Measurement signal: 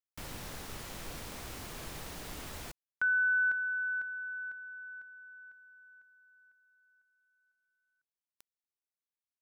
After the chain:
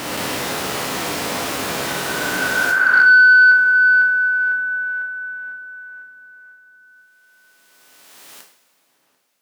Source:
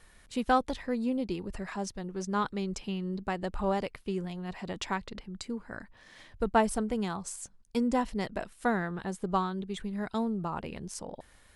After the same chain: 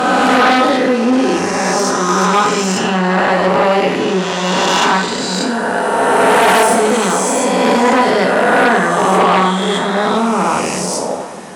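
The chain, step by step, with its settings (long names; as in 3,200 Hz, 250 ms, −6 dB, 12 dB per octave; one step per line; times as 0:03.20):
peak hold with a rise ahead of every peak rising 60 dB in 2.80 s
on a send: feedback echo with a low-pass in the loop 742 ms, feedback 45%, low-pass 980 Hz, level −16 dB
on the sum: coupled-rooms reverb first 0.54 s, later 4.4 s, from −20 dB, DRR 1 dB
in parallel at −5 dB: sine wavefolder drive 13 dB, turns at −6.5 dBFS
on the sum: Bessel high-pass filter 270 Hz, order 2
high-shelf EQ 5,200 Hz −5 dB
level +3 dB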